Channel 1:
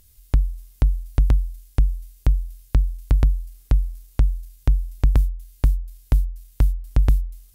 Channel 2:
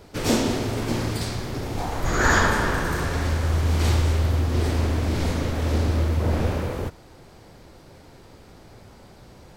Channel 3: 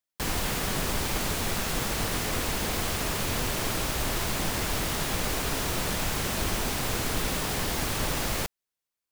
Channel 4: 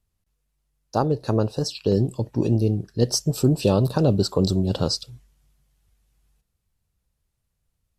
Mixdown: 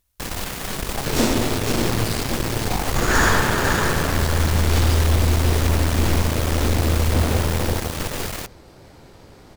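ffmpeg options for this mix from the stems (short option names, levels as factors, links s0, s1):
-filter_complex "[0:a]volume=0.133[s0];[1:a]adelay=900,volume=1.12,asplit=2[s1][s2];[s2]volume=0.473[s3];[2:a]volume=0.944[s4];[3:a]volume=0.224[s5];[s3]aecho=0:1:512:1[s6];[s0][s1][s4][s5][s6]amix=inputs=5:normalize=0,acrusher=bits=11:mix=0:aa=0.000001,aeval=exprs='0.398*(cos(1*acos(clip(val(0)/0.398,-1,1)))-cos(1*PI/2))+0.0447*(cos(8*acos(clip(val(0)/0.398,-1,1)))-cos(8*PI/2))':c=same"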